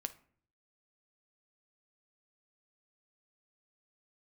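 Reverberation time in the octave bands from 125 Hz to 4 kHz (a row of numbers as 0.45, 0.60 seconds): 0.85, 0.70, 0.55, 0.50, 0.45, 0.30 seconds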